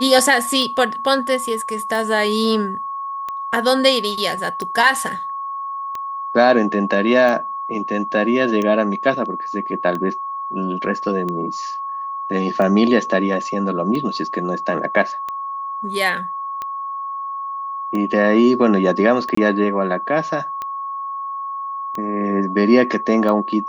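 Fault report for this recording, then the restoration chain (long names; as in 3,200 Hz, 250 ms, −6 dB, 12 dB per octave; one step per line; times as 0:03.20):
scratch tick 45 rpm −14 dBFS
whistle 1,100 Hz −24 dBFS
0:19.35–0:19.37: drop-out 24 ms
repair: click removal
notch filter 1,100 Hz, Q 30
repair the gap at 0:19.35, 24 ms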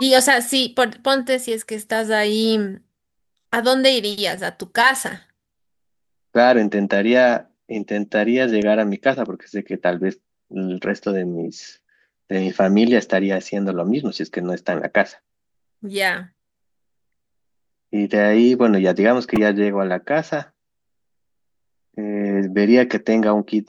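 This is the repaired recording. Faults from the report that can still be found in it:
none of them is left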